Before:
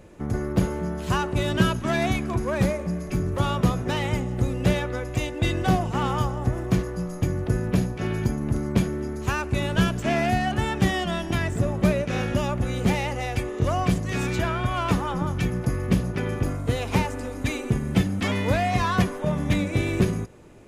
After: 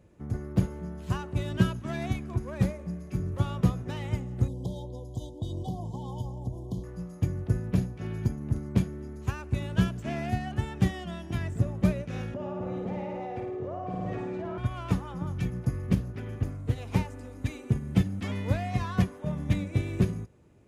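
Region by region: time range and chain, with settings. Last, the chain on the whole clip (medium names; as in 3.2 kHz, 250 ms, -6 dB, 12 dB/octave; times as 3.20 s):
4.48–6.84 s: compression, threshold -21 dBFS + brick-wall FIR band-stop 1.1–3 kHz
12.34–14.58 s: band-pass filter 580 Hz, Q 1.4 + flutter echo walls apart 9.3 m, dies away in 0.96 s + level flattener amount 100%
15.95–16.78 s: comb of notches 170 Hz + loudspeaker Doppler distortion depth 0.32 ms
whole clip: high-pass 68 Hz; bass shelf 170 Hz +12 dB; upward expansion 1.5:1, over -23 dBFS; trim -7.5 dB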